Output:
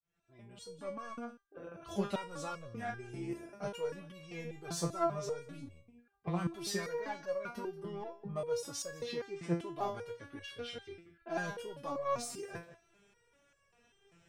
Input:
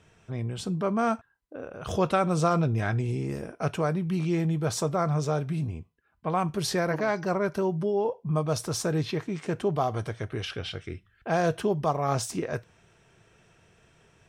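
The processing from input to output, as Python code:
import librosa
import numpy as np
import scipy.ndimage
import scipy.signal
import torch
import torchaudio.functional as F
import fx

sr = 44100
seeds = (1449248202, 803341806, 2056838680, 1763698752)

p1 = fx.fade_in_head(x, sr, length_s=1.02)
p2 = 10.0 ** (-29.5 / 20.0) * np.tanh(p1 / 10.0 ** (-29.5 / 20.0))
p3 = p1 + (p2 * librosa.db_to_amplitude(-5.0))
p4 = p3 + 10.0 ** (-17.0 / 20.0) * np.pad(p3, (int(181 * sr / 1000.0), 0))[:len(p3)]
p5 = fx.resonator_held(p4, sr, hz=5.1, low_hz=170.0, high_hz=560.0)
y = p5 * librosa.db_to_amplitude(2.0)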